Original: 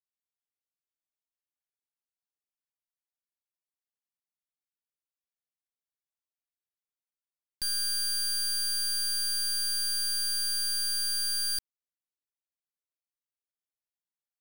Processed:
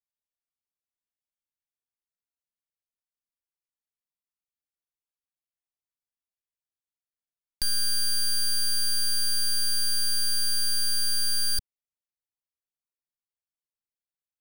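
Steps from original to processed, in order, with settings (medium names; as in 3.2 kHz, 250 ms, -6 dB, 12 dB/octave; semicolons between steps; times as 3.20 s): bass shelf 140 Hz +10.5 dB; waveshaping leveller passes 5; trim +2 dB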